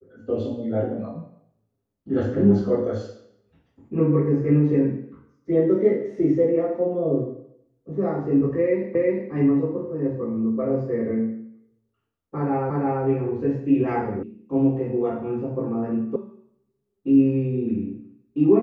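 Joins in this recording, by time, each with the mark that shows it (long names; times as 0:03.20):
0:08.95: the same again, the last 0.36 s
0:12.70: the same again, the last 0.34 s
0:14.23: cut off before it has died away
0:16.16: cut off before it has died away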